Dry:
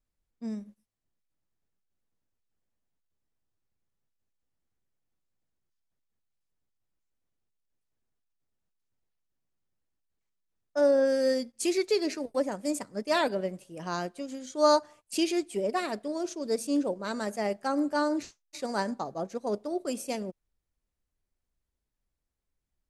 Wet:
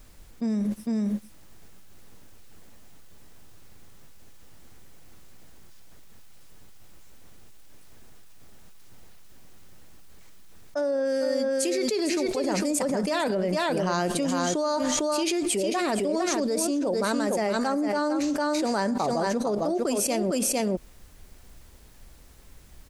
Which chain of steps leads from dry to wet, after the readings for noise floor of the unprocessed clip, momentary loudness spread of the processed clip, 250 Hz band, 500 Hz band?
-84 dBFS, 3 LU, +5.5 dB, +2.5 dB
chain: delay 453 ms -7.5 dB; level flattener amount 100%; trim -7 dB

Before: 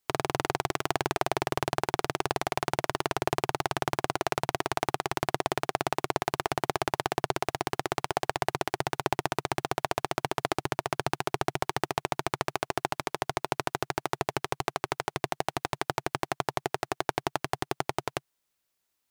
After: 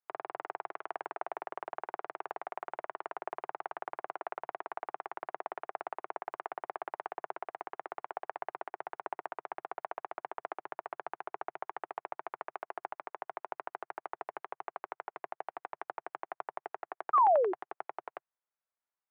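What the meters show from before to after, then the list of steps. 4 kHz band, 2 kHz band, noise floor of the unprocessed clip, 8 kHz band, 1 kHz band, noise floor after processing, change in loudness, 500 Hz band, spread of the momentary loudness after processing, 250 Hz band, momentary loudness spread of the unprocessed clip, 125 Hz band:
under -25 dB, -12.5 dB, -80 dBFS, under -40 dB, -5.0 dB, under -85 dBFS, -7.5 dB, -7.0 dB, 3 LU, -18.0 dB, 3 LU, under -35 dB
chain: painted sound fall, 17.13–17.53 s, 340–1300 Hz -14 dBFS; band-pass 190–2600 Hz; three-band isolator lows -24 dB, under 480 Hz, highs -21 dB, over 2 kHz; trim -7.5 dB

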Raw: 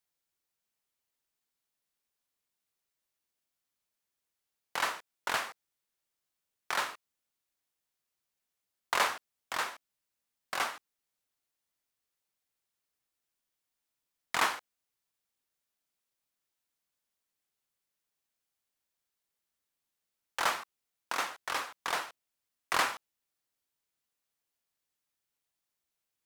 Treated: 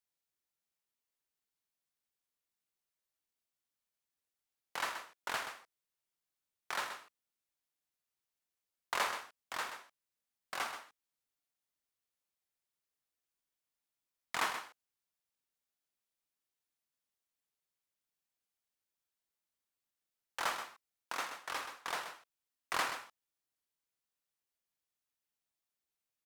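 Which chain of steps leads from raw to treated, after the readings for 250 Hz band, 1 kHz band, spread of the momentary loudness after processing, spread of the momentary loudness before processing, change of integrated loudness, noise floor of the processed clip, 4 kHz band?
-5.5 dB, -5.5 dB, 14 LU, 14 LU, -6.0 dB, under -85 dBFS, -5.5 dB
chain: delay 129 ms -9.5 dB; trim -6 dB

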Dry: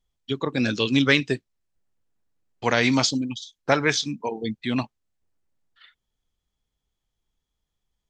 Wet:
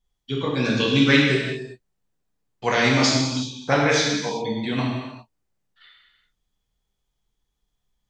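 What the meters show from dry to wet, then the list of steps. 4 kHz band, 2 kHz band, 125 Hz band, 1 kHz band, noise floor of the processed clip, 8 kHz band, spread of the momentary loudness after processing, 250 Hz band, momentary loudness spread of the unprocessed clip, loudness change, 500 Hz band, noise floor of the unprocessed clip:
+3.0 dB, +2.5 dB, +5.0 dB, +3.0 dB, -77 dBFS, +3.0 dB, 14 LU, +2.5 dB, 11 LU, +2.5 dB, +3.0 dB, -82 dBFS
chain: gated-style reverb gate 430 ms falling, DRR -4.5 dB; trim -3 dB

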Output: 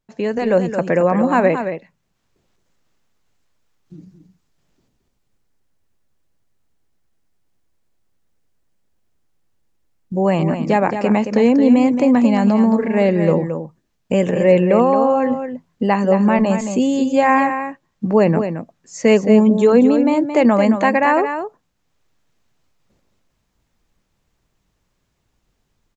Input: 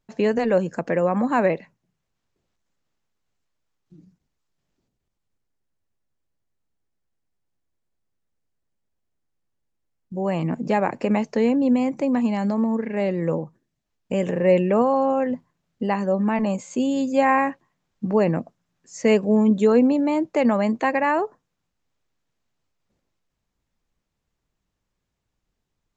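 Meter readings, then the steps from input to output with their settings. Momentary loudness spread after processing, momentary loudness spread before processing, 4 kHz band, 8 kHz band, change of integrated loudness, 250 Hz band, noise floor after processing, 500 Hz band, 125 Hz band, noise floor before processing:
12 LU, 9 LU, +6.0 dB, no reading, +6.0 dB, +6.5 dB, -69 dBFS, +6.0 dB, +6.5 dB, -79 dBFS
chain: level rider; on a send: delay 221 ms -8.5 dB; on the sum: trim -1.5 dB

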